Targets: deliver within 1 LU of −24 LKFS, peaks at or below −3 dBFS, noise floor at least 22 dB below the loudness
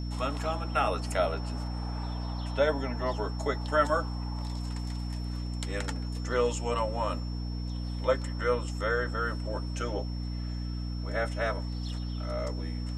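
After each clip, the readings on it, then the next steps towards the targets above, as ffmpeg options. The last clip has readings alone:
mains hum 60 Hz; hum harmonics up to 300 Hz; level of the hum −32 dBFS; interfering tone 5,400 Hz; level of the tone −48 dBFS; integrated loudness −32.0 LKFS; sample peak −10.5 dBFS; target loudness −24.0 LKFS
→ -af "bandreject=frequency=60:width_type=h:width=6,bandreject=frequency=120:width_type=h:width=6,bandreject=frequency=180:width_type=h:width=6,bandreject=frequency=240:width_type=h:width=6,bandreject=frequency=300:width_type=h:width=6"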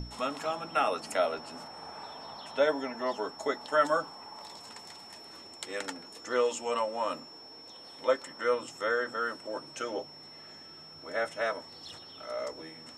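mains hum none found; interfering tone 5,400 Hz; level of the tone −48 dBFS
→ -af "bandreject=frequency=5400:width=30"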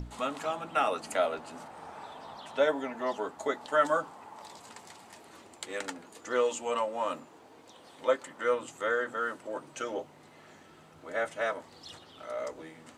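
interfering tone none found; integrated loudness −32.5 LKFS; sample peak −12.0 dBFS; target loudness −24.0 LKFS
→ -af "volume=8.5dB"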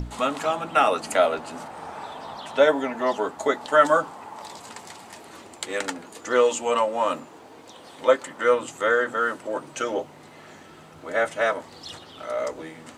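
integrated loudness −24.0 LKFS; sample peak −3.5 dBFS; background noise floor −47 dBFS

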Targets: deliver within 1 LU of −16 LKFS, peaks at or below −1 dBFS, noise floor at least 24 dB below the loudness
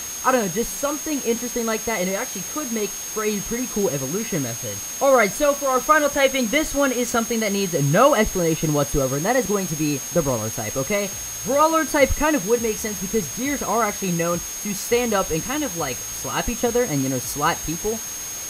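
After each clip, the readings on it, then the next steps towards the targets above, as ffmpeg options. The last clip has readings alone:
interfering tone 6,500 Hz; level of the tone −30 dBFS; background noise floor −31 dBFS; target noise floor −46 dBFS; integrated loudness −21.5 LKFS; sample peak −2.5 dBFS; target loudness −16.0 LKFS
→ -af "bandreject=frequency=6500:width=30"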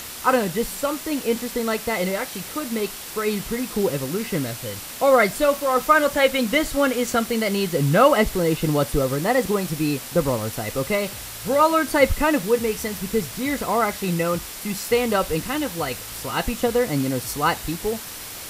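interfering tone none found; background noise floor −36 dBFS; target noise floor −46 dBFS
→ -af "afftdn=noise_reduction=10:noise_floor=-36"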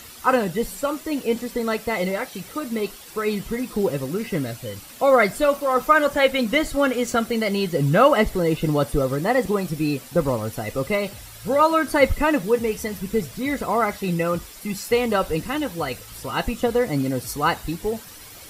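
background noise floor −42 dBFS; target noise floor −47 dBFS
→ -af "afftdn=noise_reduction=6:noise_floor=-42"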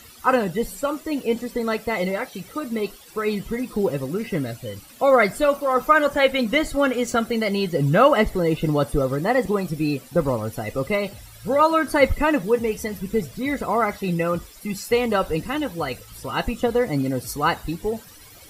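background noise floor −46 dBFS; target noise floor −47 dBFS
→ -af "afftdn=noise_reduction=6:noise_floor=-46"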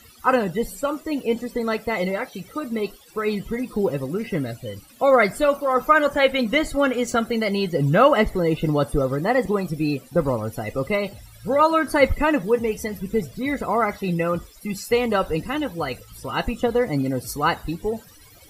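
background noise floor −49 dBFS; integrated loudness −22.5 LKFS; sample peak −3.0 dBFS; target loudness −16.0 LKFS
→ -af "volume=6.5dB,alimiter=limit=-1dB:level=0:latency=1"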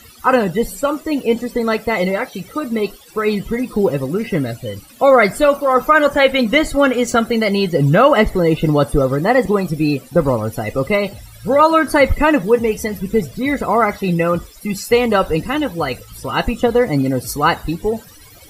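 integrated loudness −16.5 LKFS; sample peak −1.0 dBFS; background noise floor −42 dBFS

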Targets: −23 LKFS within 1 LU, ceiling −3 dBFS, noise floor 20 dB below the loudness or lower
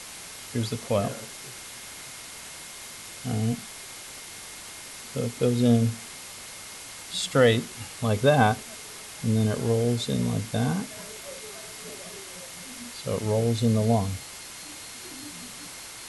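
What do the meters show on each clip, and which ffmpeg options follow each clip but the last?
background noise floor −42 dBFS; target noise floor −47 dBFS; integrated loudness −27.0 LKFS; sample peak −7.5 dBFS; target loudness −23.0 LKFS
→ -af "afftdn=noise_reduction=6:noise_floor=-42"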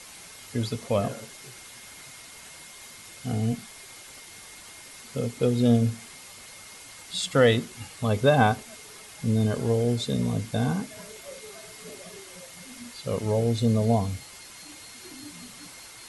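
background noise floor −46 dBFS; integrated loudness −26.0 LKFS; sample peak −7.5 dBFS; target loudness −23.0 LKFS
→ -af "volume=3dB"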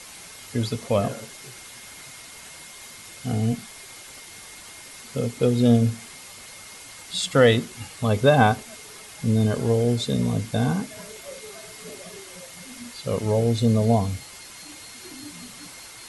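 integrated loudness −23.0 LKFS; sample peak −4.5 dBFS; background noise floor −43 dBFS

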